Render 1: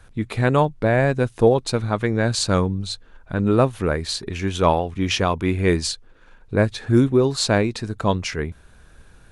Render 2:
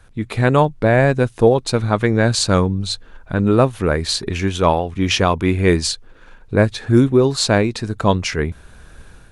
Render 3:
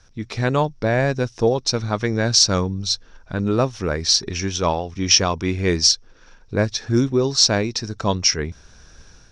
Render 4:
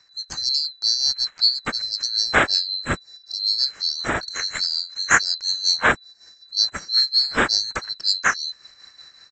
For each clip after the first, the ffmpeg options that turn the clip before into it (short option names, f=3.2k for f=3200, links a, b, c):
-af "dynaudnorm=f=100:g=5:m=7dB"
-af "lowpass=f=5.6k:t=q:w=12,volume=-5.5dB"
-af "afftfilt=real='real(if(lt(b,736),b+184*(1-2*mod(floor(b/184),2)),b),0)':imag='imag(if(lt(b,736),b+184*(1-2*mod(floor(b/184),2)),b),0)':win_size=2048:overlap=0.75,tremolo=f=5.4:d=0.59,aresample=16000,aresample=44100"